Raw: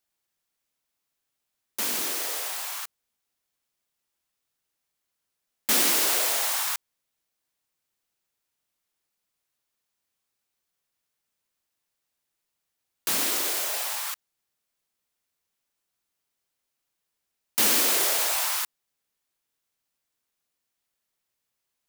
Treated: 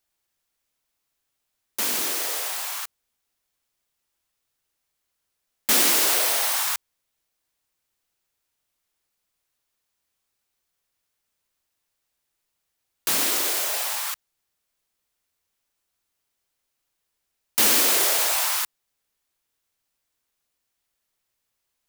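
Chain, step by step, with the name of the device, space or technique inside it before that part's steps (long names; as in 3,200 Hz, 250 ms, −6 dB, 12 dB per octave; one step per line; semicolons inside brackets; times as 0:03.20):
0:06.14–0:06.56: notch filter 7,100 Hz
low shelf boost with a cut just above (low-shelf EQ 92 Hz +6 dB; parametric band 180 Hz −3 dB 1.2 octaves)
level +3 dB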